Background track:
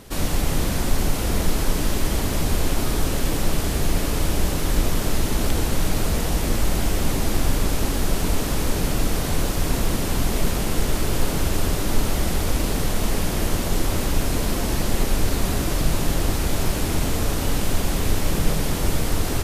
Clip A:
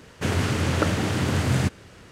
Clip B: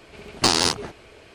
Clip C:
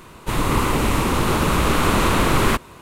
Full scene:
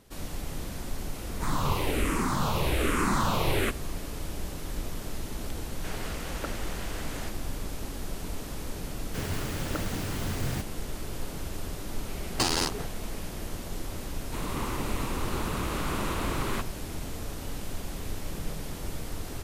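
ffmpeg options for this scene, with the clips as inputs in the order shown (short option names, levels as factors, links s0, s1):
-filter_complex "[3:a]asplit=2[s0][s1];[1:a]asplit=2[s2][s3];[0:a]volume=0.2[s4];[s0]asplit=2[s5][s6];[s6]afreqshift=-1.2[s7];[s5][s7]amix=inputs=2:normalize=1[s8];[s2]highpass=440[s9];[s3]acrusher=bits=4:mix=0:aa=0.000001[s10];[2:a]asoftclip=type=tanh:threshold=0.211[s11];[s8]atrim=end=2.81,asetpts=PTS-STARTPTS,volume=0.501,afade=t=in:d=0.004:c=hsin,afade=t=out:st=2.806:d=0.004:c=hsin,adelay=1140[s12];[s9]atrim=end=2.11,asetpts=PTS-STARTPTS,volume=0.266,afade=t=in:d=0.004:c=hsin,afade=t=out:st=2.106:d=0.004:c=hsin,adelay=5620[s13];[s10]atrim=end=2.11,asetpts=PTS-STARTPTS,volume=0.282,afade=t=in:d=0.004:c=hsin,afade=t=out:st=2.106:d=0.004:c=hsin,adelay=8930[s14];[s11]atrim=end=1.34,asetpts=PTS-STARTPTS,volume=0.631,afade=t=in:d=0.004:c=hsin,afade=t=out:st=1.336:d=0.004:c=hsin,adelay=11960[s15];[s1]atrim=end=2.81,asetpts=PTS-STARTPTS,volume=0.2,afade=t=in:d=0.004:c=hsin,afade=t=out:st=2.806:d=0.004:c=hsin,adelay=14050[s16];[s4][s12][s13][s14][s15][s16]amix=inputs=6:normalize=0"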